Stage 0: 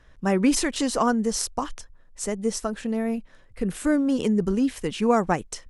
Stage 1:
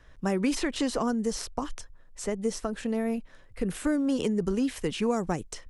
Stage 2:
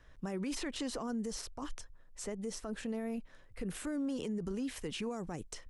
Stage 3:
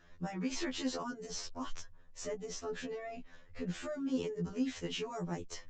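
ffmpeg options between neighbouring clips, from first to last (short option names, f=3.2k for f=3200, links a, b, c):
-filter_complex "[0:a]equalizer=f=210:t=o:w=0.35:g=-3,acrossover=split=430|4100[a][b][c];[a]acompressor=threshold=-26dB:ratio=4[d];[b]acompressor=threshold=-32dB:ratio=4[e];[c]acompressor=threshold=-41dB:ratio=4[f];[d][e][f]amix=inputs=3:normalize=0"
-af "alimiter=level_in=1.5dB:limit=-24dB:level=0:latency=1:release=63,volume=-1.5dB,volume=-5dB"
-af "aresample=16000,aresample=44100,afftfilt=real='re*2*eq(mod(b,4),0)':imag='im*2*eq(mod(b,4),0)':win_size=2048:overlap=0.75,volume=4dB"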